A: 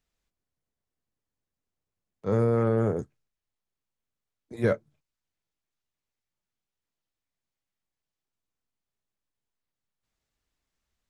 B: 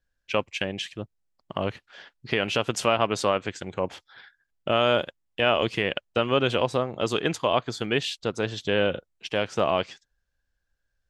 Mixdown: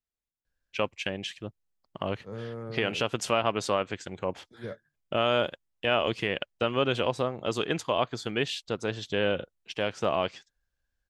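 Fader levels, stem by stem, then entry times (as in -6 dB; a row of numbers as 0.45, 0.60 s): -14.5, -3.5 dB; 0.00, 0.45 s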